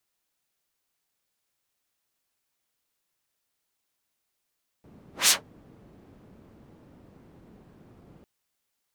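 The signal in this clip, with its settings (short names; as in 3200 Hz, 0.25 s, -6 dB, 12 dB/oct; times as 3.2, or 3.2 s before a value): whoosh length 3.40 s, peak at 0.45, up 0.17 s, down 0.15 s, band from 210 Hz, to 7200 Hz, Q 0.86, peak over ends 36.5 dB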